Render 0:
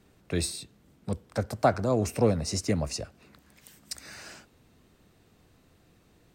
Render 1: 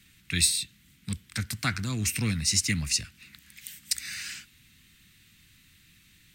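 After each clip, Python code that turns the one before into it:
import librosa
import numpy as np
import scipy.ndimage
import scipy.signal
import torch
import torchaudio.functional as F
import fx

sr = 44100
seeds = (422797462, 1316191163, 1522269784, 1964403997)

y = fx.curve_eq(x, sr, hz=(180.0, 300.0, 580.0, 2000.0, 3600.0, 5100.0, 11000.0), db=(0, -7, -27, 11, 12, 8, 12))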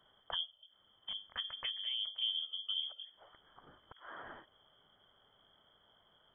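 y = fx.hum_notches(x, sr, base_hz=50, count=4)
y = fx.env_lowpass_down(y, sr, base_hz=450.0, full_db=-25.0)
y = fx.freq_invert(y, sr, carrier_hz=3300)
y = y * 10.0 ** (-8.0 / 20.0)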